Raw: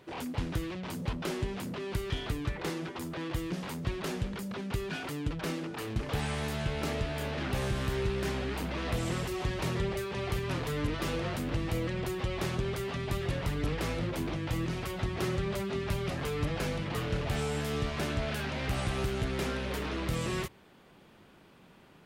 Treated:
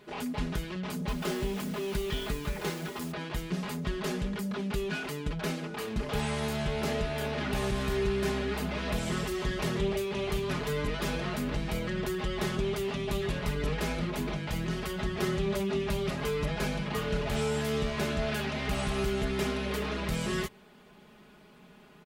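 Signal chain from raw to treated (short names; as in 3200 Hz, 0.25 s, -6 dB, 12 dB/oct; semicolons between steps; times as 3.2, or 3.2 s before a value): 1.08–3.12 requantised 8-bit, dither none; comb 4.8 ms, depth 77%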